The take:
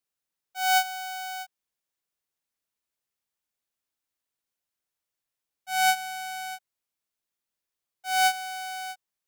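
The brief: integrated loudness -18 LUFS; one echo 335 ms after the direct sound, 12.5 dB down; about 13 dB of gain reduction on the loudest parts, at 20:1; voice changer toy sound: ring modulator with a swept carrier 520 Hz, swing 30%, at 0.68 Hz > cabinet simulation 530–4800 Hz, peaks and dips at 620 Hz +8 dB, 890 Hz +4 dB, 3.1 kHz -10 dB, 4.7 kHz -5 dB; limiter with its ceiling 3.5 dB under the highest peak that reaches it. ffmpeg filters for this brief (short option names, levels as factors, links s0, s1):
-af "acompressor=threshold=0.0282:ratio=20,alimiter=level_in=2.24:limit=0.0631:level=0:latency=1,volume=0.447,aecho=1:1:335:0.237,aeval=exprs='val(0)*sin(2*PI*520*n/s+520*0.3/0.68*sin(2*PI*0.68*n/s))':c=same,highpass=530,equalizer=f=620:t=q:w=4:g=8,equalizer=f=890:t=q:w=4:g=4,equalizer=f=3100:t=q:w=4:g=-10,equalizer=f=4700:t=q:w=4:g=-5,lowpass=f=4800:w=0.5412,lowpass=f=4800:w=1.3066,volume=16.8"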